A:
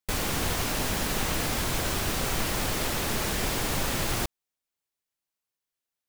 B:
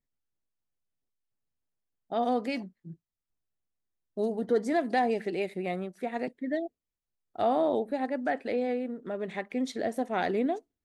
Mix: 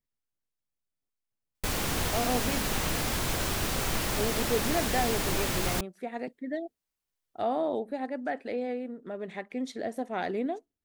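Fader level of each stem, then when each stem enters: -1.5 dB, -3.0 dB; 1.55 s, 0.00 s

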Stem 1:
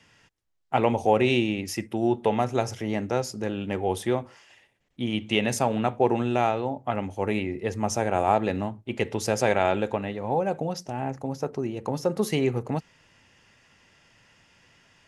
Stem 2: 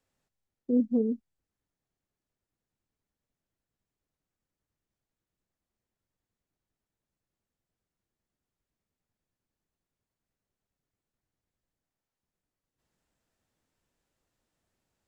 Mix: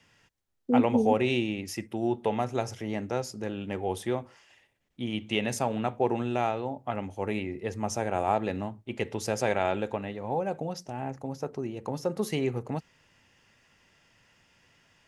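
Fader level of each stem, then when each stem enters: -4.5 dB, +1.5 dB; 0.00 s, 0.00 s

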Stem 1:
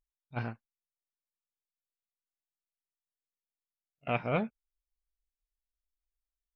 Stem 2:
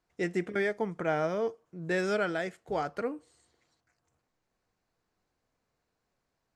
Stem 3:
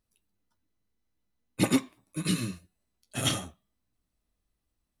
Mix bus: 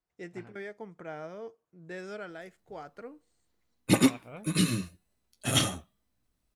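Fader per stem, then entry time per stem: -15.5 dB, -11.5 dB, +2.5 dB; 0.00 s, 0.00 s, 2.30 s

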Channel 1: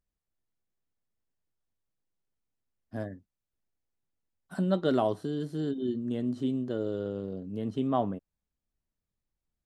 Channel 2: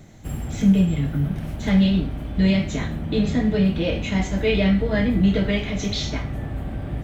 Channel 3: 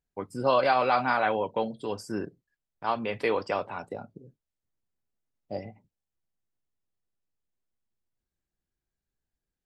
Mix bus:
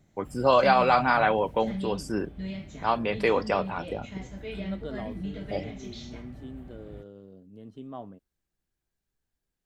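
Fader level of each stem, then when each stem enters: -12.5 dB, -17.5 dB, +3.0 dB; 0.00 s, 0.00 s, 0.00 s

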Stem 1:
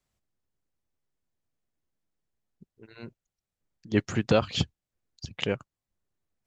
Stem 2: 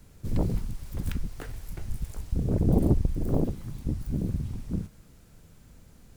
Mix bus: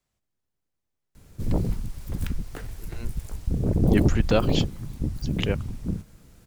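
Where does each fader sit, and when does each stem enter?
+0.5 dB, +2.0 dB; 0.00 s, 1.15 s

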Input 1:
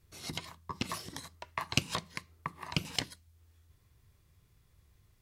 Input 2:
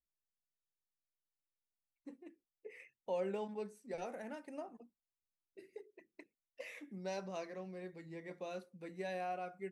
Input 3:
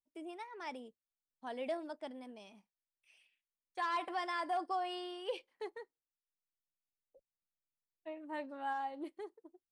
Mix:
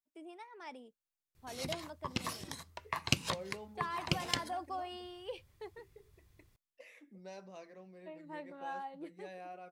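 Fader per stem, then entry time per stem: -1.0 dB, -7.5 dB, -4.0 dB; 1.35 s, 0.20 s, 0.00 s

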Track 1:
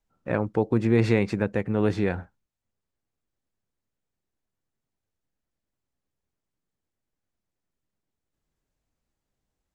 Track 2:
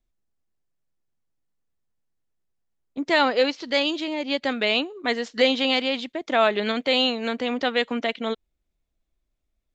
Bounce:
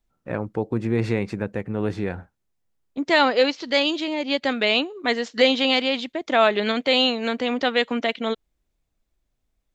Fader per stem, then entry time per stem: -2.0 dB, +2.0 dB; 0.00 s, 0.00 s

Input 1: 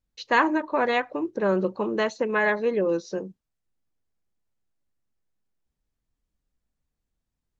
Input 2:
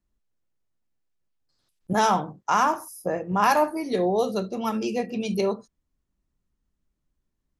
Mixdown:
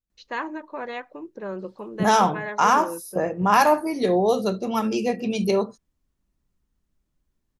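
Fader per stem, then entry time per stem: -9.5 dB, +3.0 dB; 0.00 s, 0.10 s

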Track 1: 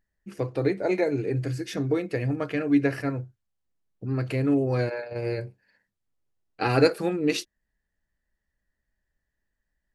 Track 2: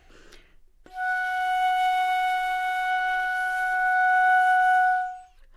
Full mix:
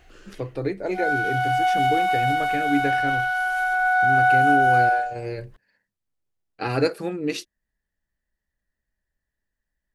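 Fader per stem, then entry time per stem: -2.0 dB, +2.5 dB; 0.00 s, 0.00 s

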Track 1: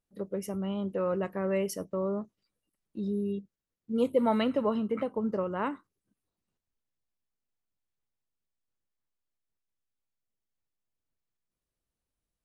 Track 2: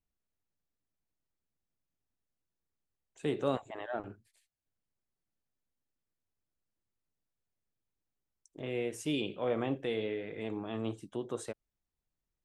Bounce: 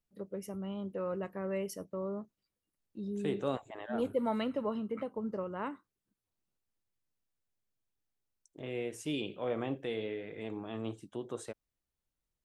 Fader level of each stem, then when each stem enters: -6.5 dB, -2.5 dB; 0.00 s, 0.00 s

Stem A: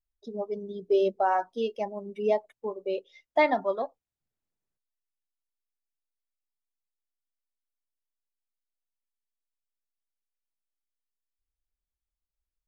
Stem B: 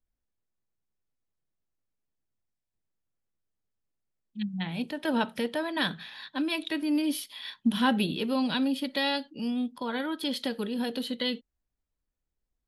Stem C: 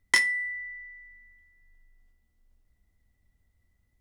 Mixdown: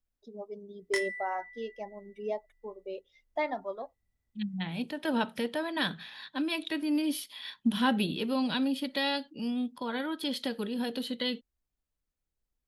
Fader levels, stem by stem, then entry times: -9.0 dB, -2.0 dB, -11.0 dB; 0.00 s, 0.00 s, 0.80 s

